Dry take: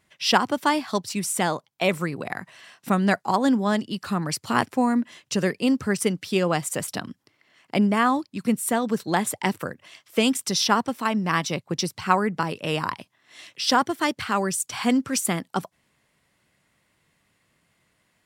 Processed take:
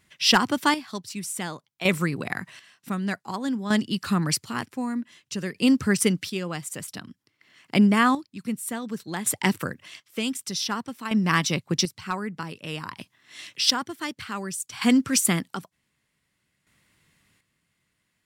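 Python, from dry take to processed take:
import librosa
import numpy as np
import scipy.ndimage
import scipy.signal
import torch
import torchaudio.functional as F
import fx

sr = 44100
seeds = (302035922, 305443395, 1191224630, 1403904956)

y = fx.peak_eq(x, sr, hz=660.0, db=-8.0, octaves=1.5)
y = np.clip(10.0 ** (11.5 / 20.0) * y, -1.0, 1.0) / 10.0 ** (11.5 / 20.0)
y = fx.chopper(y, sr, hz=0.54, depth_pct=65, duty_pct=40)
y = F.gain(torch.from_numpy(y), 4.0).numpy()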